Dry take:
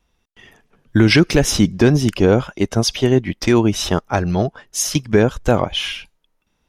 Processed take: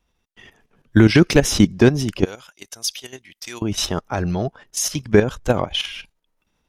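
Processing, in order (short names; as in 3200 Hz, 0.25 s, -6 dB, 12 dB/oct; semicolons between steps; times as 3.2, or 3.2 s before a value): 2.25–3.62 pre-emphasis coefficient 0.97; level quantiser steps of 12 dB; gain +2.5 dB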